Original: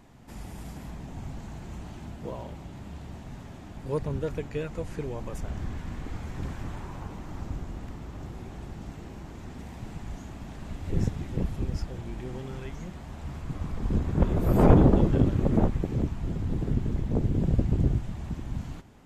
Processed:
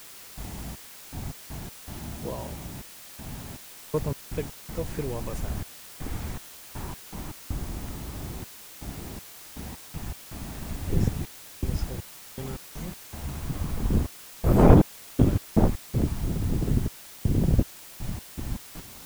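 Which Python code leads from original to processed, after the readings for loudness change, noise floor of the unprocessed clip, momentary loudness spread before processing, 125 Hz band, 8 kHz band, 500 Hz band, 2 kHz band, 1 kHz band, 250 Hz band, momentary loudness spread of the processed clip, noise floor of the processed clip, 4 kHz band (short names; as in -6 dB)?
-0.5 dB, -43 dBFS, 18 LU, 0.0 dB, n/a, +0.5 dB, +2.0 dB, +1.5 dB, +0.5 dB, 16 LU, -46 dBFS, +7.5 dB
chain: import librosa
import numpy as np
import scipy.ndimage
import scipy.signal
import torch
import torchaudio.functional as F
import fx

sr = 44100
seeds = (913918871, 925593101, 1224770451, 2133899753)

y = fx.step_gate(x, sr, bpm=80, pattern='..xx..x.x.xxxxx', floor_db=-60.0, edge_ms=4.5)
y = fx.quant_dither(y, sr, seeds[0], bits=8, dither='triangular')
y = y * librosa.db_to_amplitude(2.5)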